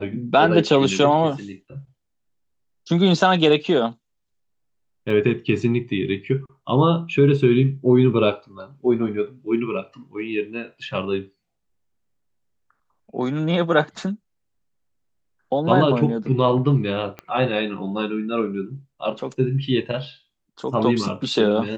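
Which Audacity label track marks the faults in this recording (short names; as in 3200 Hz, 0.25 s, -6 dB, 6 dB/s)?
5.100000	5.100000	gap 3.1 ms
17.190000	17.190000	pop -19 dBFS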